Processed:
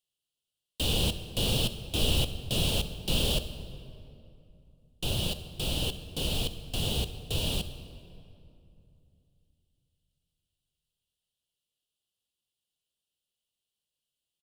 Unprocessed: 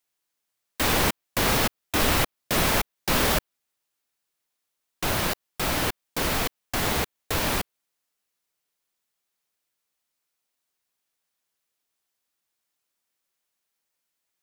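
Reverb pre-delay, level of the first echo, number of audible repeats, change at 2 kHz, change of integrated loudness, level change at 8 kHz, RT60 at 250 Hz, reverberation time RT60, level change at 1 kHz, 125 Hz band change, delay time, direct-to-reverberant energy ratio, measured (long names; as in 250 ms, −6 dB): 9 ms, −20.5 dB, 1, −13.0 dB, −5.5 dB, −7.5 dB, 3.4 s, 2.7 s, −16.5 dB, +0.5 dB, 66 ms, 10.0 dB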